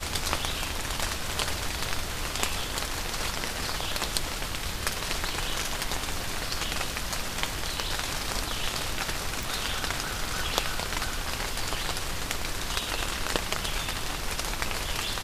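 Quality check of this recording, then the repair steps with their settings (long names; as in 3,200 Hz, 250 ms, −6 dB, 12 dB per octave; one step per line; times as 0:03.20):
0:09.43: click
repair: click removal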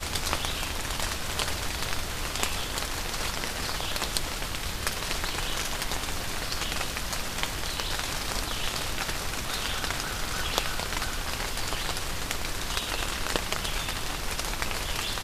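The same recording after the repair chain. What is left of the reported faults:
none of them is left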